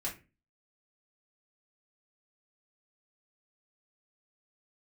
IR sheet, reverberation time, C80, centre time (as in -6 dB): 0.30 s, 17.5 dB, 21 ms